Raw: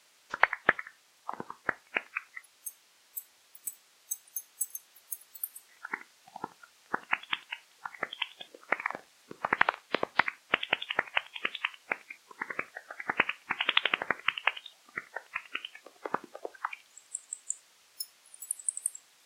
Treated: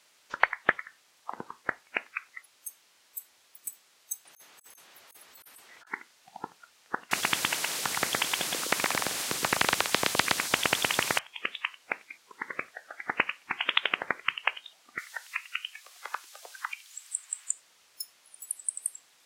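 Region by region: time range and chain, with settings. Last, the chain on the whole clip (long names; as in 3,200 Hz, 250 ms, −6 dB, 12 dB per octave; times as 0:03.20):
0:04.25–0:05.87: high-shelf EQ 3,700 Hz −10 dB + compressor whose output falls as the input rises −58 dBFS + leveller curve on the samples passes 1
0:07.11–0:11.19: high-pass filter 100 Hz + single-tap delay 117 ms −4.5 dB + every bin compressed towards the loudest bin 4 to 1
0:14.98–0:17.52: high-pass filter 1,000 Hz + spectral tilt +2.5 dB per octave + multiband upward and downward compressor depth 40%
whole clip: no processing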